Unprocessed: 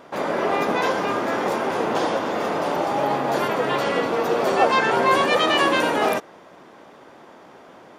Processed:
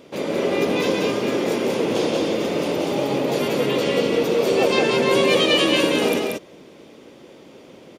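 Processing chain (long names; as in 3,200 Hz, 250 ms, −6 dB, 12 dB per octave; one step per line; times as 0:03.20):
flat-topped bell 1,100 Hz −12.5 dB
single-tap delay 184 ms −3 dB
level +3 dB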